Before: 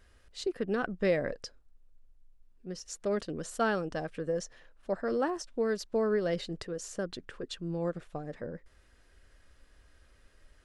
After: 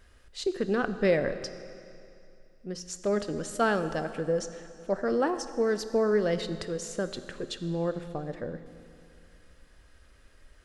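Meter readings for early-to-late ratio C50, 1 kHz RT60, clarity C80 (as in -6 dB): 11.5 dB, 2.6 s, 12.0 dB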